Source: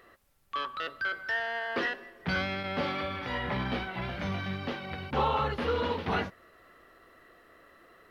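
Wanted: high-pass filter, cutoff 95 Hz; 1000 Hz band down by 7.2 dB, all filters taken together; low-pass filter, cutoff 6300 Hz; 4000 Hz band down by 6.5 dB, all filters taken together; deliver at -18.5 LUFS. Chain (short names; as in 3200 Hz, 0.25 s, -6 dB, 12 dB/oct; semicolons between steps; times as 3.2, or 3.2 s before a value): HPF 95 Hz; LPF 6300 Hz; bell 1000 Hz -9 dB; bell 4000 Hz -8 dB; gain +17.5 dB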